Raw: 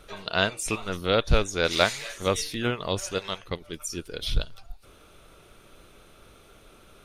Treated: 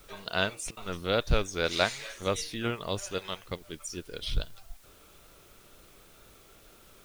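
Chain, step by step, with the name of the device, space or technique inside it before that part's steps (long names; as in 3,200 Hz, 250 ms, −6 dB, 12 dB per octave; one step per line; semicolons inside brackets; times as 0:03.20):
worn cassette (low-pass filter 9,900 Hz; tape wow and flutter; tape dropouts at 0:00.71, 58 ms −24 dB; white noise bed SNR 27 dB)
level −4.5 dB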